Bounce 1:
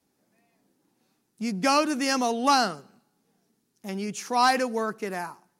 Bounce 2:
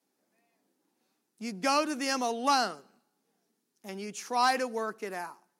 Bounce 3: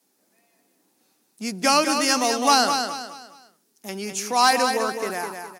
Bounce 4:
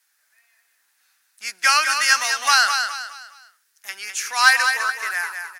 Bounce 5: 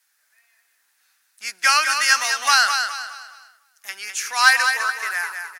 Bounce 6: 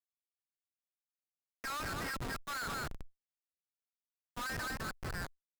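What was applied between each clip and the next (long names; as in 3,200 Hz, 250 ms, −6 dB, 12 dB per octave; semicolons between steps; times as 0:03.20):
high-pass filter 250 Hz 12 dB per octave; level −4.5 dB
high-shelf EQ 4,400 Hz +8 dB; on a send: repeating echo 207 ms, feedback 36%, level −6.5 dB; on the sum: level +7 dB
high-pass with resonance 1,600 Hz, resonance Q 3.2; level +1.5 dB
slap from a distant wall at 86 metres, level −23 dB
Chebyshev low-pass with heavy ripple 5,300 Hz, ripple 9 dB; comparator with hysteresis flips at −23 dBFS; tube saturation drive 35 dB, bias 0.55; level −3.5 dB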